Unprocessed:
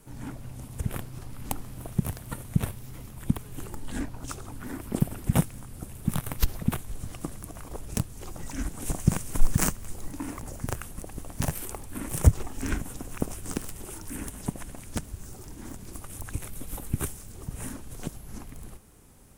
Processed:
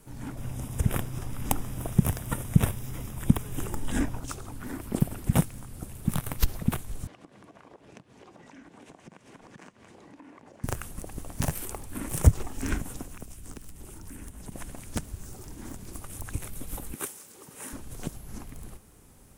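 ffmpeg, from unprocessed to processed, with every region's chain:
ffmpeg -i in.wav -filter_complex "[0:a]asettb=1/sr,asplit=3[link_01][link_02][link_03];[link_01]atrim=end=0.374[link_04];[link_02]atrim=start=0.37:end=4.2,asetpts=PTS-STARTPTS,afade=type=in:duration=0.004:curve=qsin,afade=type=out:start_time=3.826:duration=0.004:curve=qsin,asuperstop=centerf=4300:order=4:qfactor=5.6,acontrast=32[link_05];[link_03]atrim=start=4.196[link_06];[link_04][link_05]acrossfade=duration=0.004:curve1=hsin:curve2=qsin[link_07];[link_07][link_06]acrossfade=duration=0.004:curve1=qsin:curve2=hsin,asettb=1/sr,asplit=3[link_08][link_09][link_10];[link_08]atrim=end=7.074[link_11];[link_09]atrim=start=7.07:end=10.64,asetpts=PTS-STARTPTS,afade=type=in:duration=0.004:curve=qsin,afade=type=out:start_time=3.566:duration=0.004:curve=qsin,highpass=240,lowpass=3100,bandreject=frequency=1300:width=12,acompressor=threshold=-47dB:ratio=5:attack=3.2:release=140:knee=1:detection=peak[link_12];[link_10]atrim=start=10.636[link_13];[link_11][link_12]acrossfade=duration=0.004:curve1=hsin:curve2=qsin[link_14];[link_14][link_13]acrossfade=duration=0.004:curve1=qsin:curve2=hsin,asettb=1/sr,asplit=3[link_15][link_16][link_17];[link_15]atrim=end=13.044[link_18];[link_16]atrim=start=13.04:end=14.52,asetpts=PTS-STARTPTS,afade=type=in:duration=0.004:curve=qsin,afade=type=out:start_time=1.476:duration=0.004:curve=qsin,acrossover=split=91|270|1900[link_19][link_20][link_21][link_22];[link_19]acompressor=threshold=-42dB:ratio=3[link_23];[link_20]acompressor=threshold=-51dB:ratio=3[link_24];[link_21]acompressor=threshold=-54dB:ratio=3[link_25];[link_22]acompressor=threshold=-51dB:ratio=3[link_26];[link_23][link_24][link_25][link_26]amix=inputs=4:normalize=0,aeval=exprs='val(0)+0.00316*(sin(2*PI*60*n/s)+sin(2*PI*2*60*n/s)/2+sin(2*PI*3*60*n/s)/3+sin(2*PI*4*60*n/s)/4+sin(2*PI*5*60*n/s)/5)':channel_layout=same[link_27];[link_17]atrim=start=14.516[link_28];[link_18][link_27]acrossfade=duration=0.004:curve1=hsin:curve2=qsin[link_29];[link_29][link_28]acrossfade=duration=0.004:curve1=qsin:curve2=hsin,asettb=1/sr,asplit=3[link_30][link_31][link_32];[link_30]atrim=end=16.934[link_33];[link_31]atrim=start=16.93:end=17.73,asetpts=PTS-STARTPTS,afade=type=in:duration=0.004:curve=qsin,afade=type=out:start_time=0.796:duration=0.004:curve=qsin,highpass=360,bandreject=frequency=680:width=7.3[link_34];[link_32]atrim=start=17.726[link_35];[link_33][link_34]acrossfade=duration=0.004:curve1=hsin:curve2=qsin[link_36];[link_36][link_35]acrossfade=duration=0.004:curve1=qsin:curve2=hsin" out.wav

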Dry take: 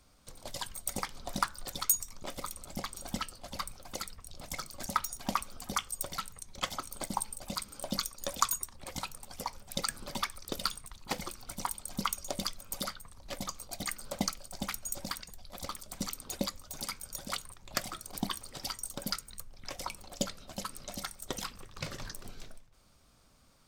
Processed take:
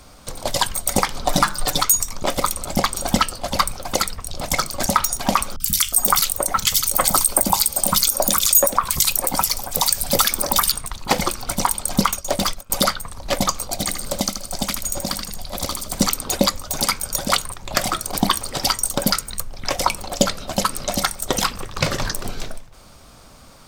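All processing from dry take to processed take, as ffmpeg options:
ffmpeg -i in.wav -filter_complex "[0:a]asettb=1/sr,asplit=3[link_01][link_02][link_03];[link_01]atrim=end=1.264[link_04];[link_02]atrim=start=1.26:end=1.82,asetpts=PTS-STARTPTS,afade=type=in:duration=0.004:curve=qsin,afade=type=out:start_time=0.556:duration=0.004:curve=qsin,bandreject=frequency=50:width_type=h:width=6,bandreject=frequency=100:width_type=h:width=6,bandreject=frequency=150:width_type=h:width=6,bandreject=frequency=200:width_type=h:width=6,bandreject=frequency=250:width_type=h:width=6,bandreject=frequency=300:width_type=h:width=6,bandreject=frequency=350:width_type=h:width=6,bandreject=frequency=400:width_type=h:width=6,aecho=1:1:6.6:0.59,atrim=end_sample=24696[link_05];[link_03]atrim=start=1.816[link_06];[link_04][link_05]acrossfade=duration=0.004:curve1=hsin:curve2=qsin[link_07];[link_07][link_06]acrossfade=duration=0.004:curve1=qsin:curve2=hsin,asettb=1/sr,asplit=3[link_08][link_09][link_10];[link_08]atrim=end=5.564[link_11];[link_09]atrim=start=5.56:end=10.72,asetpts=PTS-STARTPTS,afade=type=in:duration=0.004:curve=qsin,afade=type=out:start_time=5.156:duration=0.004:curve=qsin,aemphasis=mode=production:type=50fm,acrossover=split=170|1900[link_12][link_13][link_14];[link_14]adelay=40[link_15];[link_13]adelay=360[link_16];[link_12][link_16][link_15]amix=inputs=3:normalize=0,atrim=end_sample=227556[link_17];[link_10]atrim=start=10.716[link_18];[link_11][link_17]acrossfade=duration=0.004:curve1=hsin:curve2=qsin[link_19];[link_19][link_18]acrossfade=duration=0.004:curve1=qsin:curve2=hsin,asettb=1/sr,asplit=3[link_20][link_21][link_22];[link_20]atrim=end=12.074[link_23];[link_21]atrim=start=12.07:end=12.7,asetpts=PTS-STARTPTS,afade=type=in:duration=0.004:curve=qsin,afade=type=out:start_time=0.626:duration=0.004:curve=qsin,agate=range=-33dB:threshold=-39dB:ratio=3:release=100:detection=peak,asoftclip=type=hard:threshold=-33.5dB[link_24];[link_22]atrim=start=12.696[link_25];[link_23][link_24]acrossfade=duration=0.004:curve1=hsin:curve2=qsin[link_26];[link_26][link_25]acrossfade=duration=0.004:curve1=qsin:curve2=hsin,asettb=1/sr,asplit=3[link_27][link_28][link_29];[link_27]atrim=end=13.694[link_30];[link_28]atrim=start=13.69:end=16.01,asetpts=PTS-STARTPTS,afade=type=in:duration=0.004:curve=qsin,afade=type=out:start_time=2.316:duration=0.004:curve=qsin,acrossover=split=460|3000[link_31][link_32][link_33];[link_31]acompressor=threshold=-43dB:ratio=4[link_34];[link_32]acompressor=threshold=-53dB:ratio=4[link_35];[link_33]acompressor=threshold=-41dB:ratio=4[link_36];[link_34][link_35][link_36]amix=inputs=3:normalize=0,aecho=1:1:79|158|237|316:0.447|0.147|0.0486|0.0161,atrim=end_sample=102312[link_37];[link_29]atrim=start=16.006[link_38];[link_30][link_37]acrossfade=duration=0.004:curve1=hsin:curve2=qsin[link_39];[link_39][link_38]acrossfade=duration=0.004:curve1=qsin:curve2=hsin,equalizer=frequency=740:width=0.85:gain=3.5,alimiter=level_in=19dB:limit=-1dB:release=50:level=0:latency=1,volume=-1dB" out.wav

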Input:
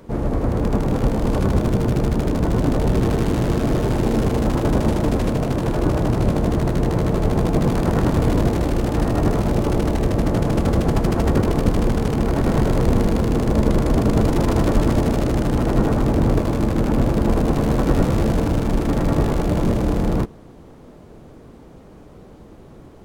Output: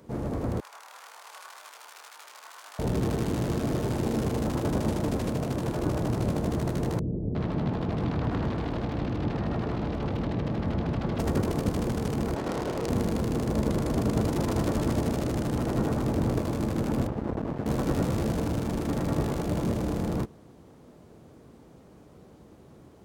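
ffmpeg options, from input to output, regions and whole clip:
ffmpeg -i in.wav -filter_complex "[0:a]asettb=1/sr,asplit=3[link_01][link_02][link_03];[link_01]atrim=end=0.604[link_04];[link_02]atrim=start=0.6:end=2.79,asetpts=PTS-STARTPTS,afade=type=in:duration=0.004:curve=qsin,afade=type=out:start_time=2.186:duration=0.004:curve=qsin,highpass=frequency=1000:width=0.5412,highpass=frequency=1000:width=1.3066,flanger=delay=19.5:depth=7.5:speed=1.9[link_05];[link_03]atrim=start=2.786[link_06];[link_04][link_05]acrossfade=duration=0.004:curve1=hsin:curve2=qsin[link_07];[link_07][link_06]acrossfade=duration=0.004:curve1=qsin:curve2=hsin,asettb=1/sr,asplit=3[link_08][link_09][link_10];[link_08]atrim=end=6.994[link_11];[link_09]atrim=start=6.99:end=11.19,asetpts=PTS-STARTPTS,afade=type=in:duration=0.004:curve=qsin,afade=type=out:start_time=4.196:duration=0.004:curve=qsin,lowpass=frequency=4100:width=0.5412,lowpass=frequency=4100:width=1.3066,aeval=exprs='clip(val(0),-1,0.168)':channel_layout=same,acrossover=split=450[link_12][link_13];[link_13]adelay=360[link_14];[link_12][link_14]amix=inputs=2:normalize=0,atrim=end_sample=185220[link_15];[link_10]atrim=start=11.186[link_16];[link_11][link_15]acrossfade=duration=0.004:curve1=hsin:curve2=qsin[link_17];[link_17][link_16]acrossfade=duration=0.004:curve1=qsin:curve2=hsin,asettb=1/sr,asplit=3[link_18][link_19][link_20];[link_18]atrim=end=12.354[link_21];[link_19]atrim=start=12.35:end=12.9,asetpts=PTS-STARTPTS,afade=type=in:duration=0.004:curve=qsin,afade=type=out:start_time=0.546:duration=0.004:curve=qsin,bass=frequency=250:gain=-10,treble=frequency=4000:gain=10,asplit=2[link_22][link_23];[link_23]adelay=30,volume=-5dB[link_24];[link_22][link_24]amix=inputs=2:normalize=0,atrim=end_sample=24255,adynamicsmooth=sensitivity=2.5:basefreq=560[link_25];[link_20]atrim=start=12.896[link_26];[link_21][link_25]acrossfade=duration=0.004:curve1=hsin:curve2=qsin[link_27];[link_27][link_26]acrossfade=duration=0.004:curve1=qsin:curve2=hsin,asettb=1/sr,asplit=3[link_28][link_29][link_30];[link_28]atrim=end=17.074[link_31];[link_29]atrim=start=17.07:end=17.66,asetpts=PTS-STARTPTS,afade=type=in:duration=0.004:curve=qsin,afade=type=out:start_time=0.586:duration=0.004:curve=qsin,lowpass=1300,aeval=exprs='max(val(0),0)':channel_layout=same[link_32];[link_30]atrim=start=17.656[link_33];[link_31][link_32]acrossfade=duration=0.004:curve1=hsin:curve2=qsin[link_34];[link_34][link_33]acrossfade=duration=0.004:curve1=qsin:curve2=hsin,highpass=70,bass=frequency=250:gain=1,treble=frequency=4000:gain=4,volume=-8.5dB" out.wav

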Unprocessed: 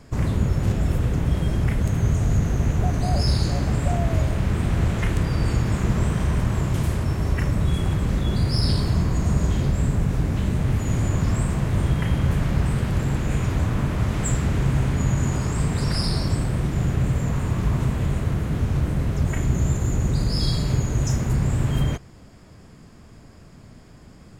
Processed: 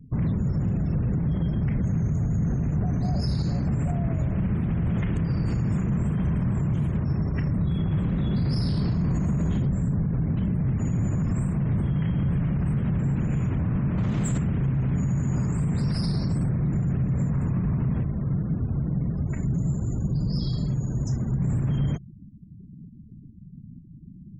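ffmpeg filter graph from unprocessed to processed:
ffmpeg -i in.wav -filter_complex "[0:a]asettb=1/sr,asplit=3[link_01][link_02][link_03];[link_01]atrim=end=7.924[link_04];[link_02]atrim=start=7.92:end=9.59,asetpts=PTS-STARTPTS,afade=type=in:duration=0.004:curve=qsin,afade=type=out:start_time=1.666:duration=0.004:curve=qsin,bass=frequency=250:gain=-2,treble=frequency=4000:gain=-3,acontrast=28[link_05];[link_03]atrim=start=9.586[link_06];[link_04][link_05]acrossfade=duration=0.004:curve1=hsin:curve2=qsin[link_07];[link_07][link_06]acrossfade=duration=0.004:curve1=qsin:curve2=hsin,asettb=1/sr,asplit=3[link_08][link_09][link_10];[link_08]atrim=end=13.984[link_11];[link_09]atrim=start=13.98:end=14.38,asetpts=PTS-STARTPTS,afade=type=in:duration=0.004:curve=qsin,afade=type=out:start_time=0.396:duration=0.004:curve=qsin,equalizer=frequency=65:width=1.3:gain=-5.5,acontrast=67[link_12];[link_10]atrim=start=14.376[link_13];[link_11][link_12]acrossfade=duration=0.004:curve1=hsin:curve2=qsin[link_14];[link_14][link_13]acrossfade=duration=0.004:curve1=qsin:curve2=hsin,asettb=1/sr,asplit=3[link_15][link_16][link_17];[link_15]atrim=end=18.034[link_18];[link_16]atrim=start=18.03:end=21.41,asetpts=PTS-STARTPTS,afade=type=in:duration=0.004:curve=qsin,afade=type=out:start_time=3.376:duration=0.004:curve=qsin,flanger=delay=2.6:depth=4.2:regen=-59:speed=1.6:shape=sinusoidal,acrusher=bits=8:dc=4:mix=0:aa=0.000001[link_19];[link_17]atrim=start=21.406[link_20];[link_18][link_19]acrossfade=duration=0.004:curve1=hsin:curve2=qsin[link_21];[link_21][link_20]acrossfade=duration=0.004:curve1=qsin:curve2=hsin,afftfilt=real='re*gte(hypot(re,im),0.0158)':imag='im*gte(hypot(re,im),0.0158)':win_size=1024:overlap=0.75,equalizer=frequency=170:width=1:gain=13,alimiter=limit=-12dB:level=0:latency=1:release=37,volume=-6dB" out.wav

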